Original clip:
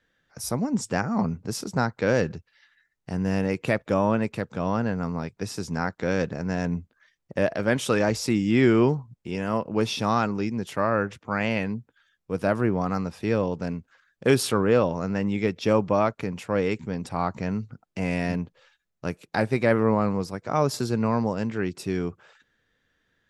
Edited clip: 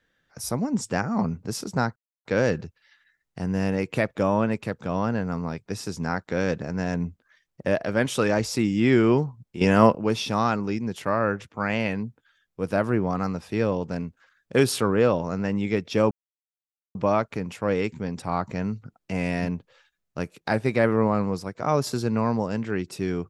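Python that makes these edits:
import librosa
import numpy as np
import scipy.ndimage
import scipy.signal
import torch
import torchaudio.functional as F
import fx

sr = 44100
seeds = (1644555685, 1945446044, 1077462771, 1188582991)

y = fx.edit(x, sr, fx.insert_silence(at_s=1.96, length_s=0.29),
    fx.clip_gain(start_s=9.32, length_s=0.34, db=10.0),
    fx.insert_silence(at_s=15.82, length_s=0.84), tone=tone)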